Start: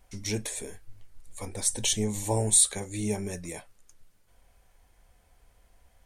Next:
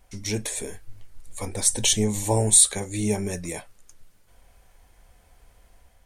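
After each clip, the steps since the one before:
automatic gain control gain up to 3.5 dB
level +2.5 dB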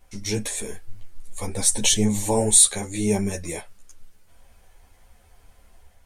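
string-ensemble chorus
level +4.5 dB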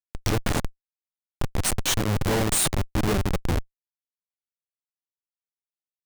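parametric band 230 Hz −8 dB 0.39 octaves
in parallel at +1 dB: upward compression, threshold −23 dBFS
on the sum: comparator with hysteresis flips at −16 dBFS
level −3 dB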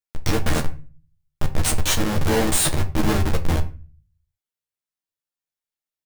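double-tracking delay 13 ms −2 dB
convolution reverb RT60 0.35 s, pre-delay 6 ms, DRR 6.5 dB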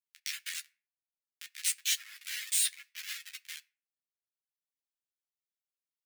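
reverb reduction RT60 0.94 s
Butterworth high-pass 1,900 Hz 36 dB per octave
level −6.5 dB

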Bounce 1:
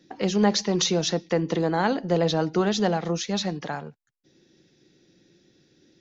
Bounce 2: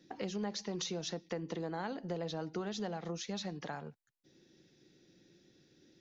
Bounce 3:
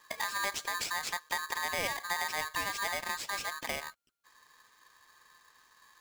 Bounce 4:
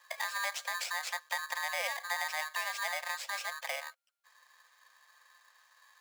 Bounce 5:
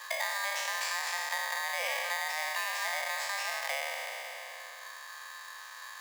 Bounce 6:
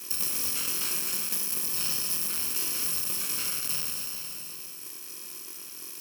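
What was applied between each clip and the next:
downward compressor 3 to 1, threshold −34 dBFS, peak gain reduction 14 dB; level −5 dB
drawn EQ curve 120 Hz 0 dB, 1,000 Hz +8 dB, 2,600 Hz 0 dB, 5,000 Hz +4 dB; ring modulator with a square carrier 1,400 Hz
Chebyshev high-pass with heavy ripple 510 Hz, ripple 3 dB
peak hold with a decay on every bin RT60 1.91 s; multiband upward and downward compressor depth 70%; level −1.5 dB
samples in bit-reversed order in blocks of 64 samples; level +5 dB

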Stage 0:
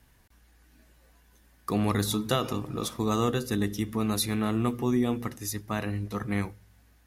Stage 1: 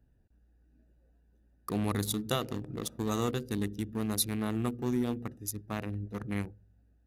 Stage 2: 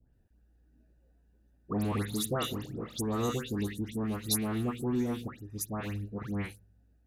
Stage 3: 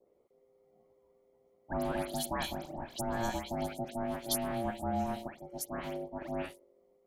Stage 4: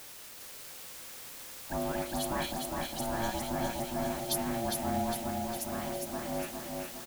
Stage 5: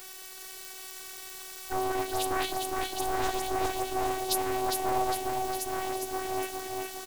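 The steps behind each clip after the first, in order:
adaptive Wiener filter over 41 samples; high-shelf EQ 5,400 Hz +8 dB; level −4.5 dB
all-pass dispersion highs, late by 139 ms, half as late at 2,000 Hz
ring modulation 460 Hz
bit-depth reduction 8 bits, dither triangular; repeating echo 407 ms, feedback 55%, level −3.5 dB
phases set to zero 378 Hz; highs frequency-modulated by the lows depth 0.57 ms; level +6.5 dB

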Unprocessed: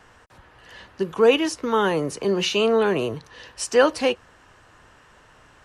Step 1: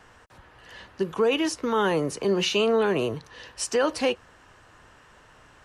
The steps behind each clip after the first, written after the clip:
brickwall limiter −14 dBFS, peak gain reduction 7.5 dB
level −1 dB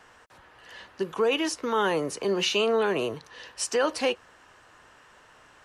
low-shelf EQ 210 Hz −10.5 dB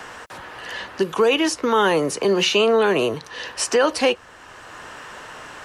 multiband upward and downward compressor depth 40%
level +7.5 dB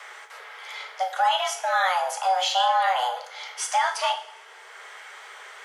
frequency shifter +370 Hz
coupled-rooms reverb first 0.44 s, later 1.7 s, from −18 dB, DRR 3 dB
level −7 dB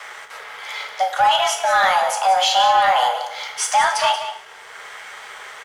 leveller curve on the samples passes 1
single-tap delay 182 ms −11.5 dB
level +3.5 dB

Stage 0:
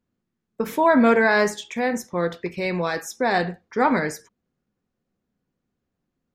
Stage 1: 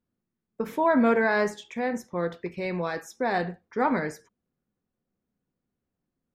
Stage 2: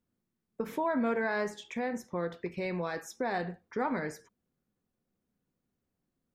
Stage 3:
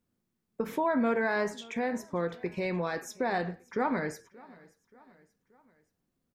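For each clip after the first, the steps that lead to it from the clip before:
high-shelf EQ 3,000 Hz −7.5 dB; level −4.5 dB
downward compressor 2 to 1, threshold −34 dBFS, peak gain reduction 9.5 dB
repeating echo 579 ms, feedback 50%, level −23 dB; level +2.5 dB

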